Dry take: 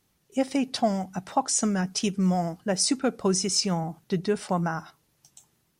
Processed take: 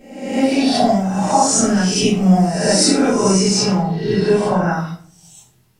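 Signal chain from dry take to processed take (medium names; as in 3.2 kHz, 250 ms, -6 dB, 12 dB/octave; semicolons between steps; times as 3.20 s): reverse spectral sustain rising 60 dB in 0.85 s; 3.31–4.71 s: treble shelf 8.6 kHz -8.5 dB; simulated room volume 49 m³, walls mixed, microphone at 2.1 m; trim -3.5 dB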